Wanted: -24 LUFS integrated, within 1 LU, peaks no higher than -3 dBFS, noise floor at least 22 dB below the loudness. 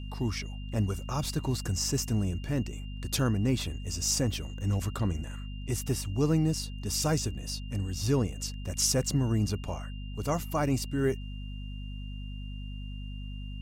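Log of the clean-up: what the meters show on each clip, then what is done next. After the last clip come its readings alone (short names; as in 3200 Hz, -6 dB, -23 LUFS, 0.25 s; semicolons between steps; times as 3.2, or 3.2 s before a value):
hum 50 Hz; harmonics up to 250 Hz; hum level -36 dBFS; steady tone 2800 Hz; tone level -51 dBFS; loudness -30.5 LUFS; peak -14.5 dBFS; loudness target -24.0 LUFS
-> de-hum 50 Hz, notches 5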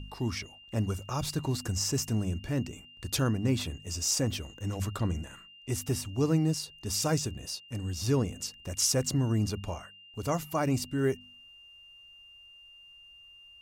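hum none; steady tone 2800 Hz; tone level -51 dBFS
-> notch 2800 Hz, Q 30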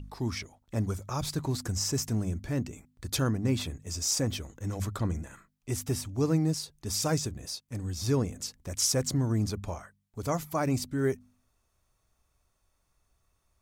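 steady tone none; loudness -31.0 LUFS; peak -15.0 dBFS; loudness target -24.0 LUFS
-> gain +7 dB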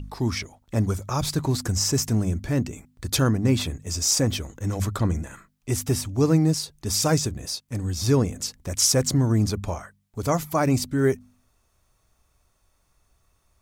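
loudness -24.0 LUFS; peak -8.0 dBFS; noise floor -68 dBFS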